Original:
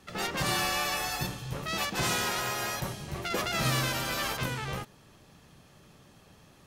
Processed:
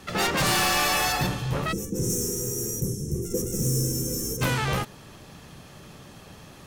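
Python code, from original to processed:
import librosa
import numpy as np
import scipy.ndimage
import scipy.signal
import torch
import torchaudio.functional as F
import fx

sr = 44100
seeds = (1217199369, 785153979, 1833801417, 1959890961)

y = fx.high_shelf(x, sr, hz=3400.0, db=-6.5, at=(1.12, 2.1))
y = fx.fold_sine(y, sr, drive_db=9, ceiling_db=-16.0)
y = fx.spec_box(y, sr, start_s=1.72, length_s=2.7, low_hz=530.0, high_hz=5300.0, gain_db=-30)
y = y * librosa.db_to_amplitude(-2.5)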